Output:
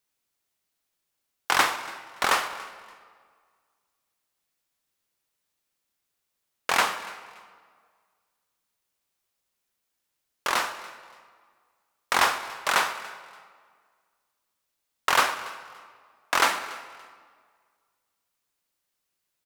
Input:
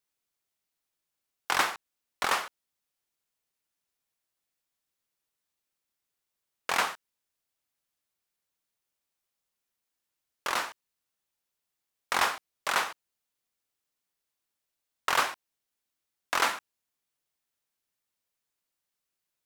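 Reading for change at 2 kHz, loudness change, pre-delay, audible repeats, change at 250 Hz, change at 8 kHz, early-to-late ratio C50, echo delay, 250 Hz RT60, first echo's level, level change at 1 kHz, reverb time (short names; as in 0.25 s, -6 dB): +5.0 dB, +4.0 dB, 26 ms, 2, +5.0 dB, +5.0 dB, 11.0 dB, 0.286 s, 1.8 s, -21.0 dB, +5.0 dB, 1.8 s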